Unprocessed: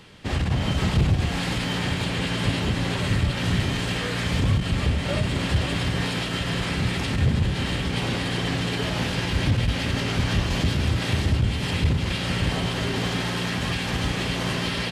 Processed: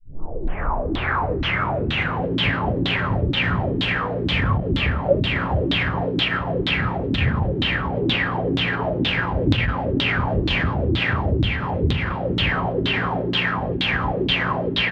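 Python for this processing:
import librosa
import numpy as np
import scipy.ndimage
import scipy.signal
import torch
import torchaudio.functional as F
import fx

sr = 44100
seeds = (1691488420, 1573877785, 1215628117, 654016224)

y = fx.tape_start_head(x, sr, length_s=2.29)
y = fx.filter_lfo_lowpass(y, sr, shape='saw_down', hz=2.1, low_hz=280.0, high_hz=3800.0, q=7.0)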